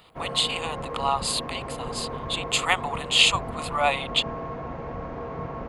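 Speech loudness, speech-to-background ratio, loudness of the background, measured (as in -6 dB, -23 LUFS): -24.5 LUFS, 10.0 dB, -34.5 LUFS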